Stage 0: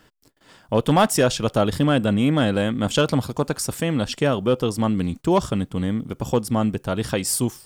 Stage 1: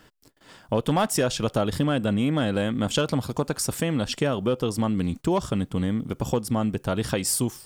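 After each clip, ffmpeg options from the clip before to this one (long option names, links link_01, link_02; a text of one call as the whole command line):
ffmpeg -i in.wav -af "acompressor=threshold=-23dB:ratio=2.5,volume=1dB" out.wav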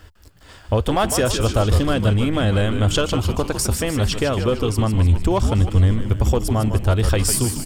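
ffmpeg -i in.wav -filter_complex "[0:a]lowshelf=frequency=110:width_type=q:width=3:gain=12,bandreject=frequency=890:width=24,asplit=8[link_01][link_02][link_03][link_04][link_05][link_06][link_07][link_08];[link_02]adelay=153,afreqshift=-100,volume=-8dB[link_09];[link_03]adelay=306,afreqshift=-200,volume=-13.2dB[link_10];[link_04]adelay=459,afreqshift=-300,volume=-18.4dB[link_11];[link_05]adelay=612,afreqshift=-400,volume=-23.6dB[link_12];[link_06]adelay=765,afreqshift=-500,volume=-28.8dB[link_13];[link_07]adelay=918,afreqshift=-600,volume=-34dB[link_14];[link_08]adelay=1071,afreqshift=-700,volume=-39.2dB[link_15];[link_01][link_09][link_10][link_11][link_12][link_13][link_14][link_15]amix=inputs=8:normalize=0,volume=4.5dB" out.wav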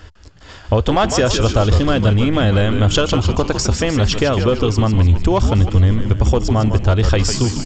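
ffmpeg -i in.wav -af "acompressor=threshold=-20dB:ratio=1.5,aresample=16000,aresample=44100,volume=6dB" out.wav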